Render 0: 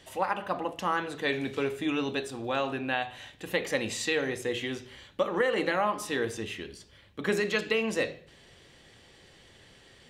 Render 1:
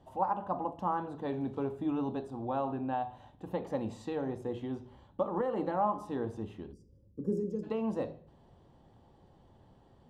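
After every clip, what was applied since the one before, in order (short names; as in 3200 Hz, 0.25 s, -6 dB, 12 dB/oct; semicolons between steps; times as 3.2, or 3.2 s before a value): spectral gain 6.73–7.63, 560–4700 Hz -25 dB; EQ curve 250 Hz 0 dB, 460 Hz -7 dB, 890 Hz +2 dB, 2100 Hz -26 dB, 3300 Hz -21 dB, 6400 Hz -24 dB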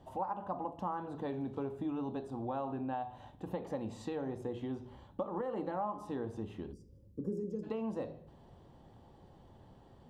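compressor 2.5:1, threshold -40 dBFS, peak gain reduction 10.5 dB; gain +2.5 dB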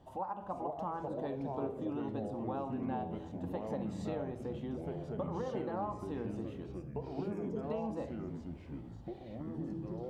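echoes that change speed 0.415 s, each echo -4 st, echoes 3; gain -2 dB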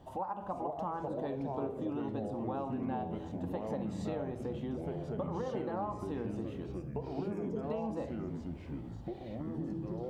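compressor 1.5:1, threshold -43 dBFS, peak gain reduction 4.5 dB; gain +4.5 dB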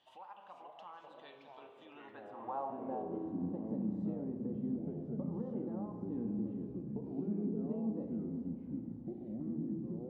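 band-pass sweep 3000 Hz -> 230 Hz, 1.8–3.43; spring tank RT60 3.1 s, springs 34 ms, chirp 60 ms, DRR 8.5 dB; gain +3.5 dB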